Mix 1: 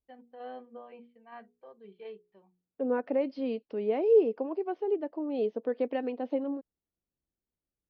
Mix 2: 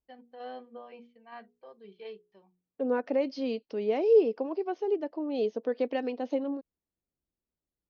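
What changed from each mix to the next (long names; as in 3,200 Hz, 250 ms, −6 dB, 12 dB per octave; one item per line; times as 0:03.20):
master: remove high-frequency loss of the air 300 metres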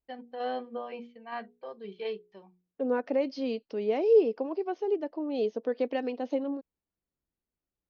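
first voice +8.5 dB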